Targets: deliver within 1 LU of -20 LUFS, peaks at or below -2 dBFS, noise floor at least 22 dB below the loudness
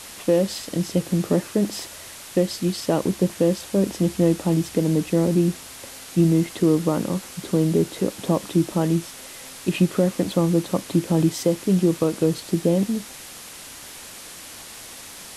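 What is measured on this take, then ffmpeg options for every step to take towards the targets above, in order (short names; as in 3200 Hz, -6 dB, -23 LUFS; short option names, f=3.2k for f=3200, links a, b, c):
noise floor -40 dBFS; noise floor target -45 dBFS; loudness -22.5 LUFS; peak -8.0 dBFS; loudness target -20.0 LUFS
-> -af "afftdn=nr=6:nf=-40"
-af "volume=2.5dB"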